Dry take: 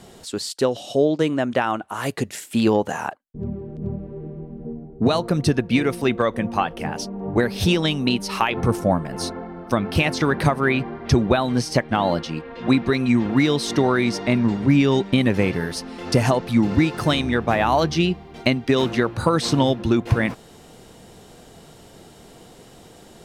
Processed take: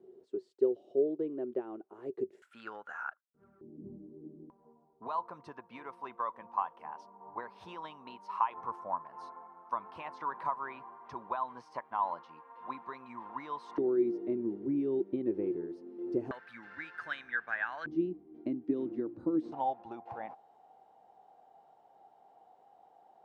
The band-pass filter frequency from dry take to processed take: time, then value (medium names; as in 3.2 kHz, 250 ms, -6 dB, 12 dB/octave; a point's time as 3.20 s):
band-pass filter, Q 12
380 Hz
from 2.42 s 1.4 kHz
from 3.61 s 290 Hz
from 4.50 s 1 kHz
from 13.78 s 350 Hz
from 16.31 s 1.6 kHz
from 17.86 s 310 Hz
from 19.52 s 790 Hz